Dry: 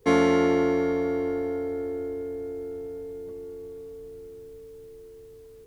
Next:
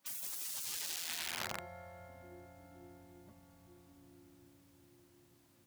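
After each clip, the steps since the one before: integer overflow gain 22.5 dB; spectral gate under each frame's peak -15 dB weak; high-pass 90 Hz; trim -6 dB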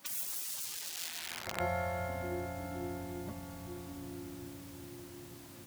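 compressor with a negative ratio -47 dBFS, ratio -0.5; trim +11.5 dB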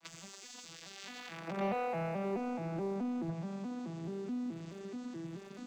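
vocoder on a broken chord minor triad, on E3, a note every 214 ms; waveshaping leveller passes 2; tape noise reduction on one side only encoder only; trim -3 dB

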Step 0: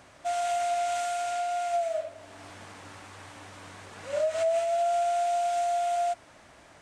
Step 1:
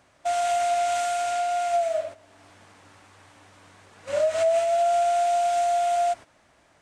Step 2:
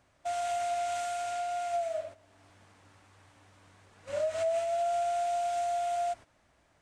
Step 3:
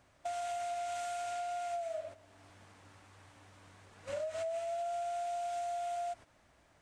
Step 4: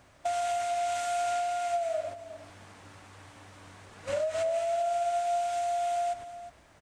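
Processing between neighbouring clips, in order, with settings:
gate -41 dBFS, range -11 dB; trim +4.5 dB
bass shelf 110 Hz +9.5 dB; trim -8.5 dB
compression 4:1, threshold -38 dBFS, peak gain reduction 9.5 dB; trim +1 dB
delay 358 ms -14 dB; trim +8 dB

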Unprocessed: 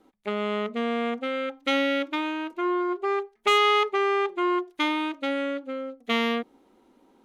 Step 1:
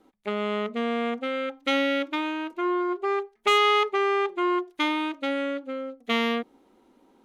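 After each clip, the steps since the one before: no audible change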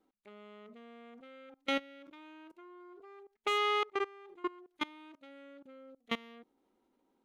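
level held to a coarse grid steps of 23 dB; trim -7 dB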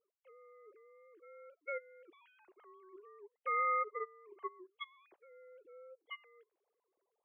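formants replaced by sine waves; trim -4 dB

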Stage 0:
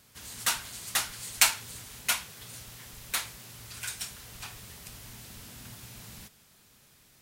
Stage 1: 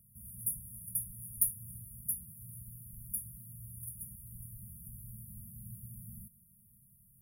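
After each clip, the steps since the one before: peaking EQ 120 Hz +3 dB 0.25 oct; FFT band-reject 230–9500 Hz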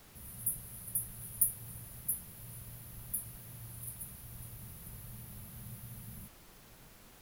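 added noise pink -58 dBFS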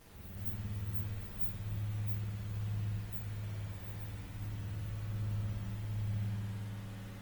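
frequency axis rescaled in octaves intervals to 116%; spring tank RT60 3.8 s, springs 57 ms, chirp 40 ms, DRR -4.5 dB; trim +5 dB; Opus 24 kbps 48 kHz

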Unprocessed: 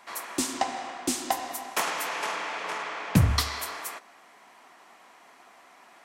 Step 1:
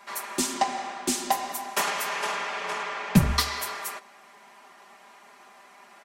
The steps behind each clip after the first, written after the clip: comb 5 ms, depth 80%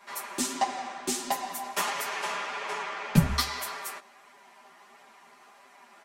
chorus voices 2, 1.5 Hz, delay 10 ms, depth 3 ms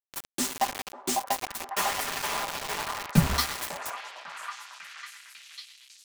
bit crusher 5-bit; repeats whose band climbs or falls 549 ms, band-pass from 760 Hz, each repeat 0.7 oct, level -2.5 dB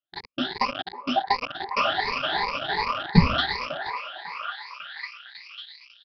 drifting ripple filter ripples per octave 0.88, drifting +2.7 Hz, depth 24 dB; resampled via 11.025 kHz

